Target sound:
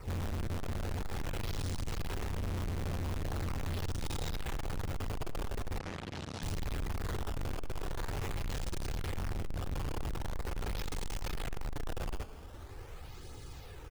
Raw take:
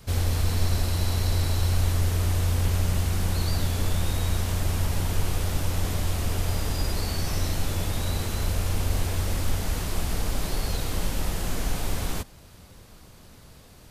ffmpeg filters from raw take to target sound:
ffmpeg -i in.wav -filter_complex "[0:a]equalizer=frequency=2100:width_type=o:width=1.4:gain=-3.5,aecho=1:1:2.4:0.67,acrusher=samples=13:mix=1:aa=0.000001:lfo=1:lforange=20.8:lforate=0.43,asoftclip=type=hard:threshold=-17dB,flanger=delay=0.1:depth=7.3:regen=-35:speed=0.3:shape=triangular,asoftclip=type=tanh:threshold=-37dB,asettb=1/sr,asplit=3[link_01][link_02][link_03];[link_01]atrim=end=5.794[link_04];[link_02]atrim=start=5.79:end=6.43,asetpts=PTS-STARTPTS,afade=type=in:duration=0.004:curve=qsin,afade=type=out:start_time=0.636:duration=0.004:curve=qsin,highpass=130,lowpass=6200[link_05];[link_03]atrim=start=6.426[link_06];[link_04][link_05]acrossfade=duration=0.004:curve1=hsin:curve2=qsin[link_07];[link_07][link_06]acrossfade=duration=0.004:curve1=qsin:curve2=hsin,asplit=2[link_08][link_09];[link_09]adelay=110,lowpass=frequency=1800:poles=1,volume=-17.5dB,asplit=2[link_10][link_11];[link_11]adelay=110,lowpass=frequency=1800:poles=1,volume=0.46,asplit=2[link_12][link_13];[link_13]adelay=110,lowpass=frequency=1800:poles=1,volume=0.46,asplit=2[link_14][link_15];[link_15]adelay=110,lowpass=frequency=1800:poles=1,volume=0.46[link_16];[link_08][link_10][link_12][link_14][link_16]amix=inputs=5:normalize=0,volume=3.5dB" out.wav

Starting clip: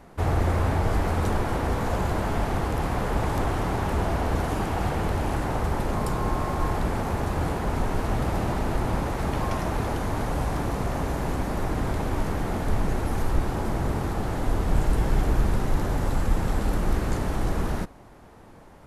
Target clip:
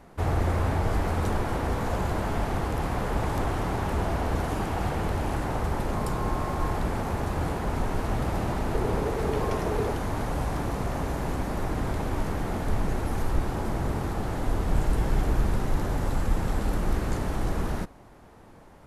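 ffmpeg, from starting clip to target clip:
ffmpeg -i in.wav -filter_complex "[0:a]asettb=1/sr,asplit=3[link_01][link_02][link_03];[link_01]atrim=end=8.744[link_04];[link_02]atrim=start=8.74:end=9.91,asetpts=PTS-STARTPTS,afade=type=in:duration=0.004:curve=qsin,afade=type=out:start_time=1.166:duration=0.004:curve=qsin,equalizer=frequency=430:width=4.4:gain=12.5[link_05];[link_03]atrim=start=9.906[link_06];[link_04][link_05]acrossfade=duration=0.004:curve1=hsin:curve2=qsin[link_07];[link_07][link_06]acrossfade=duration=0.004:curve1=qsin:curve2=hsin,volume=-2dB" out.wav

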